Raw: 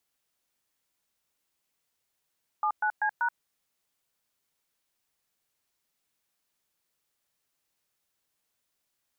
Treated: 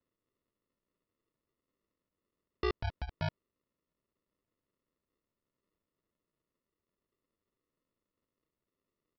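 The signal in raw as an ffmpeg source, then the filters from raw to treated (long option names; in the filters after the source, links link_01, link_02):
-f lavfi -i "aevalsrc='0.0473*clip(min(mod(t,0.193),0.078-mod(t,0.193))/0.002,0,1)*(eq(floor(t/0.193),0)*(sin(2*PI*852*mod(t,0.193))+sin(2*PI*1209*mod(t,0.193)))+eq(floor(t/0.193),1)*(sin(2*PI*852*mod(t,0.193))+sin(2*PI*1477*mod(t,0.193)))+eq(floor(t/0.193),2)*(sin(2*PI*852*mod(t,0.193))+sin(2*PI*1633*mod(t,0.193)))+eq(floor(t/0.193),3)*(sin(2*PI*941*mod(t,0.193))+sin(2*PI*1477*mod(t,0.193))))':duration=0.772:sample_rate=44100"
-af "aresample=11025,acrusher=samples=14:mix=1:aa=0.000001,aresample=44100,bass=frequency=250:gain=-7,treble=frequency=4000:gain=-4"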